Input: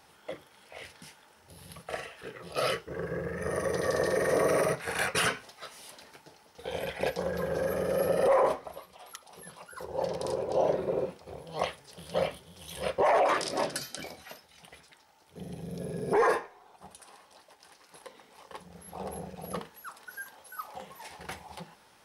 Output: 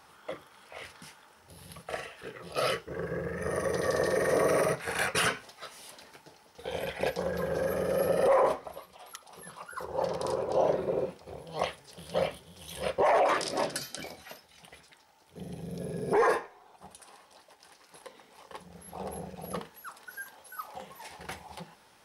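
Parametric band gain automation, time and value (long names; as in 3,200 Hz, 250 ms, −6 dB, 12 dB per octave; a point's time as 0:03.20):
parametric band 1,200 Hz 0.6 octaves
0:00.98 +7.5 dB
0:01.73 +0.5 dB
0:09.13 +0.5 dB
0:09.64 +8.5 dB
0:10.40 +8.5 dB
0:10.93 −0.5 dB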